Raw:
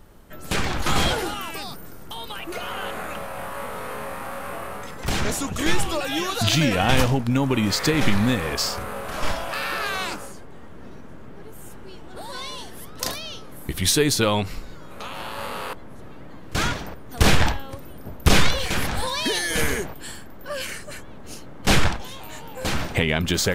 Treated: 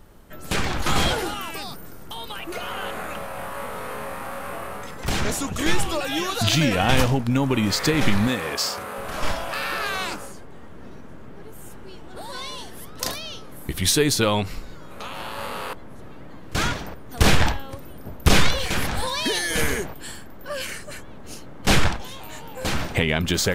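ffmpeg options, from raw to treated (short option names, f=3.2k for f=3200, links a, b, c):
-filter_complex "[0:a]asettb=1/sr,asplit=3[a][b][c];[a]atrim=end=8.274[d];[b]atrim=start=8.27:end=8.98,asetpts=PTS-STARTPTS,afade=t=in:d=0.004:c=qsin,afade=t=out:st=0.706:d=0.004:c=qsin,highpass=f=260:p=1[e];[c]atrim=start=8.976[f];[d][e]acrossfade=d=0.004:c1=hsin:c2=qsin[g];[g][f]acrossfade=d=0.004:c1=qsin:c2=hsin"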